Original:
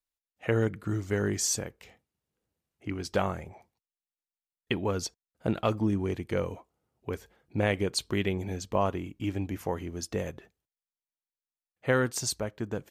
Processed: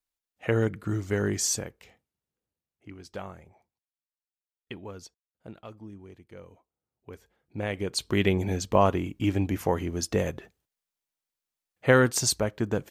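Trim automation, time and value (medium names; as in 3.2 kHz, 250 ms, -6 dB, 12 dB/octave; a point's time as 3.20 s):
1.48 s +1.5 dB
2.93 s -10.5 dB
4.75 s -10.5 dB
5.67 s -17 dB
6.36 s -17 dB
7.73 s -4 dB
8.27 s +6 dB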